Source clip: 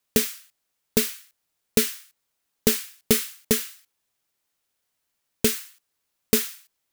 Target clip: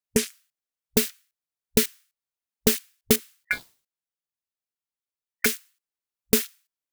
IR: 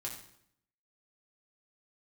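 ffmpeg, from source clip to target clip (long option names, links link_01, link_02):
-filter_complex "[0:a]afwtdn=0.02,asettb=1/sr,asplit=3[link_01][link_02][link_03];[link_01]atrim=end=3.434[link_04];[link_02]atrim=start=3.43:end=5.46,asetpts=PTS-STARTPTS,afade=type=in:duration=0.004:curve=qsin,afade=type=out:start_time=2.026:duration=0.004:curve=qsin,aeval=exprs='val(0)*sin(2*PI*1900*n/s)':channel_layout=same[link_05];[link_03]atrim=start=5.456[link_06];[link_04][link_05]acrossfade=duration=0.004:curve1=hsin:curve2=qsin[link_07];[link_07][link_06]acrossfade=duration=0.004:curve1=qsin:curve2=hsin,aeval=exprs='0.668*(cos(1*acos(clip(val(0)/0.668,-1,1)))-cos(1*PI/2))+0.00473*(cos(6*acos(clip(val(0)/0.668,-1,1)))-cos(6*PI/2))':channel_layout=same"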